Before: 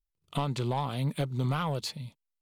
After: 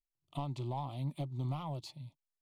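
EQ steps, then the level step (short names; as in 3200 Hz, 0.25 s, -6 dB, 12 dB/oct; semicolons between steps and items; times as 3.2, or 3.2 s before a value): high shelf 4400 Hz -10.5 dB; fixed phaser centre 310 Hz, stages 8; -6.5 dB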